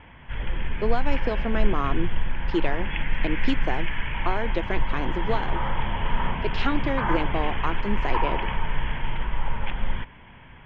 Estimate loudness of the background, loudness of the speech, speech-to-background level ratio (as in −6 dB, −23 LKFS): −30.5 LKFS, −30.0 LKFS, 0.5 dB